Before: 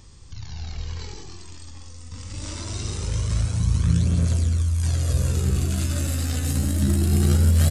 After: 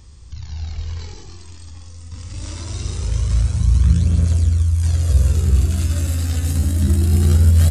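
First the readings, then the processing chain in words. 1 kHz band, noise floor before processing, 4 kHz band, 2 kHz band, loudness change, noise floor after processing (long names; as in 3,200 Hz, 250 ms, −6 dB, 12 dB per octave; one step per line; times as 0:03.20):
0.0 dB, −40 dBFS, 0.0 dB, 0.0 dB, +5.0 dB, −37 dBFS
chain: parametric band 65 Hz +12 dB 0.63 octaves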